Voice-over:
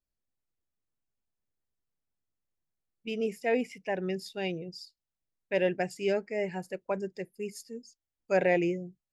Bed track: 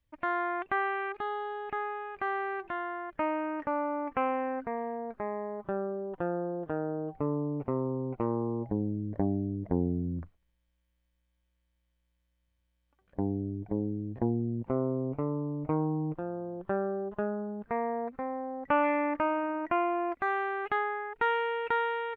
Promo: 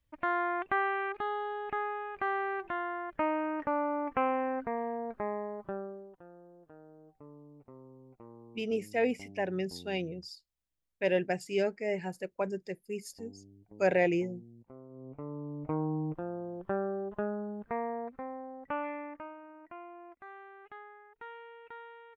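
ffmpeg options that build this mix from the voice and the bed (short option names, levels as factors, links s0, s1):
-filter_complex "[0:a]adelay=5500,volume=0.891[s0];[1:a]volume=9.44,afade=t=out:st=5.29:d=0.91:silence=0.0841395,afade=t=in:st=14.89:d=1.07:silence=0.105925,afade=t=out:st=17.51:d=1.86:silence=0.141254[s1];[s0][s1]amix=inputs=2:normalize=0"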